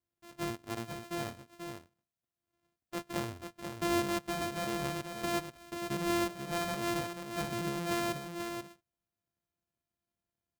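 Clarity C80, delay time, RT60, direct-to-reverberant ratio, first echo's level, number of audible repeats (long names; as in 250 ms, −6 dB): no reverb audible, 486 ms, no reverb audible, no reverb audible, −6.5 dB, 1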